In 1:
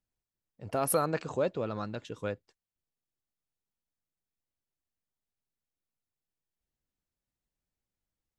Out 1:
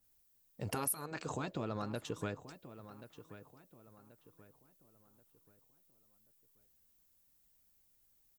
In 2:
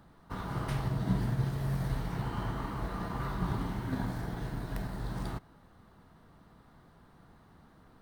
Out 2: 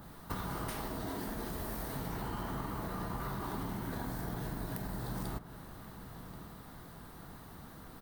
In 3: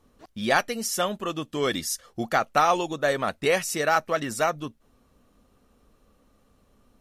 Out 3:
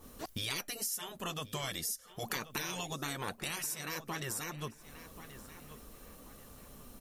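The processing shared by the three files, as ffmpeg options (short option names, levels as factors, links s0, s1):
-filter_complex "[0:a]afftfilt=real='re*lt(hypot(re,im),0.158)':imag='im*lt(hypot(re,im),0.158)':win_size=1024:overlap=0.75,aemphasis=mode=production:type=50fm,acompressor=threshold=0.00631:ratio=4,asplit=2[s0][s1];[s1]adelay=1082,lowpass=f=2300:p=1,volume=0.211,asplit=2[s2][s3];[s3]adelay=1082,lowpass=f=2300:p=1,volume=0.38,asplit=2[s4][s5];[s5]adelay=1082,lowpass=f=2300:p=1,volume=0.38,asplit=2[s6][s7];[s7]adelay=1082,lowpass=f=2300:p=1,volume=0.38[s8];[s2][s4][s6][s8]amix=inputs=4:normalize=0[s9];[s0][s9]amix=inputs=2:normalize=0,adynamicequalizer=threshold=0.00126:dfrequency=1600:dqfactor=0.7:tfrequency=1600:tqfactor=0.7:attack=5:release=100:ratio=0.375:range=2:mode=cutabove:tftype=highshelf,volume=2.37"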